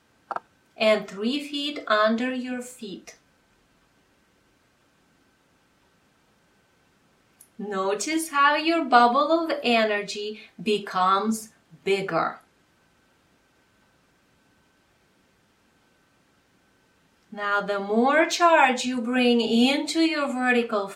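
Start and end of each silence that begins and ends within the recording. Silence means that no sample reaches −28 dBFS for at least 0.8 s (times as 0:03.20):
0:03.09–0:07.60
0:12.31–0:17.38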